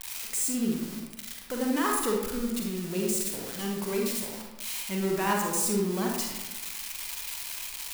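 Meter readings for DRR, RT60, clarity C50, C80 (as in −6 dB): −1.0 dB, 1.1 s, 1.0 dB, 4.0 dB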